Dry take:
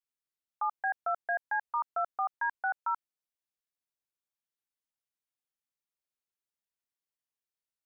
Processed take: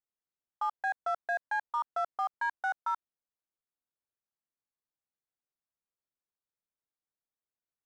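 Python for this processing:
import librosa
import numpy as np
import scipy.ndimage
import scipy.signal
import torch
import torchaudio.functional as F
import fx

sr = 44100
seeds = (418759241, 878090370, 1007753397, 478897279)

y = fx.wiener(x, sr, points=15)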